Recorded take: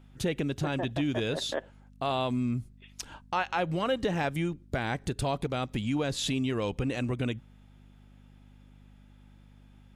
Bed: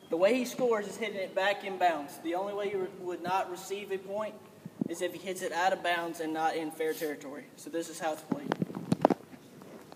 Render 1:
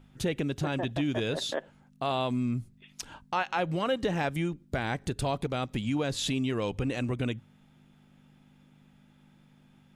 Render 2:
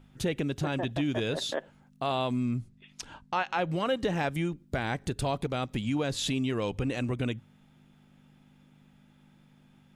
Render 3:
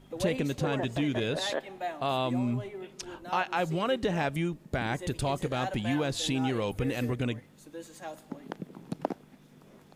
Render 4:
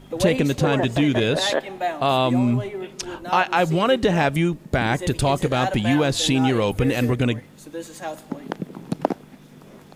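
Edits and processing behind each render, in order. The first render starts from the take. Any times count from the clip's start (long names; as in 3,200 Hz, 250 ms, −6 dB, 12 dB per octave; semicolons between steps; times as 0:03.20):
hum removal 50 Hz, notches 2
0:02.57–0:03.71: Bessel low-pass filter 7,900 Hz
mix in bed −8 dB
level +10 dB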